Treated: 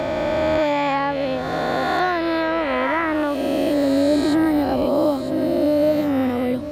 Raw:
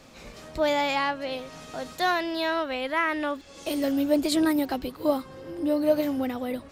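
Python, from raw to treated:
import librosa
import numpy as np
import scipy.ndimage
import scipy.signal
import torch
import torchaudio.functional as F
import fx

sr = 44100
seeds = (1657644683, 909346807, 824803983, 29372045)

p1 = fx.spec_swells(x, sr, rise_s=2.47)
p2 = scipy.signal.sosfilt(scipy.signal.butter(2, 87.0, 'highpass', fs=sr, output='sos'), p1)
p3 = fx.tilt_eq(p2, sr, slope=-3.0)
p4 = p3 + fx.echo_single(p3, sr, ms=955, db=-19.0, dry=0)
y = fx.band_squash(p4, sr, depth_pct=70)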